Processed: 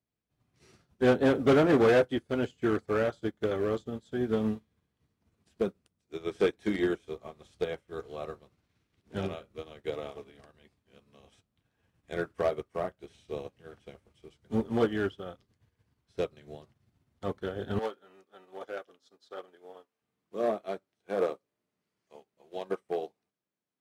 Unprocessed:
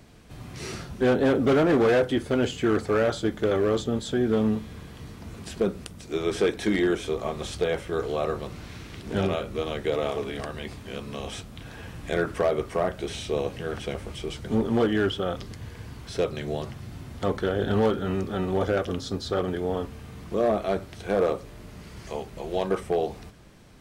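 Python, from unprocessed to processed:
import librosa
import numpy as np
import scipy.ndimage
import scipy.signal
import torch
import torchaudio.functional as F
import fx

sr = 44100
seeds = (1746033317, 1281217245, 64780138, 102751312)

y = fx.highpass(x, sr, hz=fx.steps((0.0, 55.0), (17.79, 460.0), (20.02, 210.0)), slope=12)
y = fx.upward_expand(y, sr, threshold_db=-43.0, expansion=2.5)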